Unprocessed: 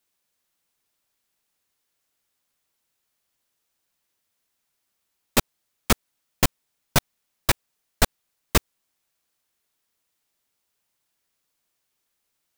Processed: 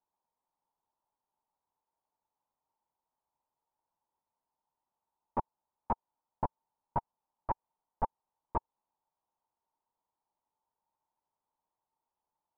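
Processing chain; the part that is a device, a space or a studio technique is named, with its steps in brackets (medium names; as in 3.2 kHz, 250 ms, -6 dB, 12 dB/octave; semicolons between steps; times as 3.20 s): overdriven synthesiser ladder filter (saturation -17.5 dBFS, distortion -9 dB; four-pole ladder low-pass 960 Hz, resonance 80%); trim +2.5 dB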